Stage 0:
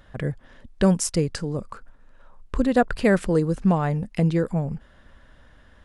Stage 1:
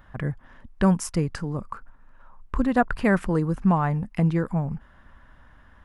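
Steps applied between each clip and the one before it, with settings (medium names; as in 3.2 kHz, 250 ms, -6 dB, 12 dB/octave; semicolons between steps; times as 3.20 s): graphic EQ 500/1000/4000/8000 Hz -7/+6/-7/-7 dB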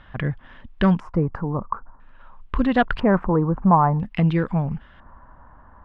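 saturation -12 dBFS, distortion -19 dB; LFO low-pass square 0.5 Hz 990–3300 Hz; trim +3.5 dB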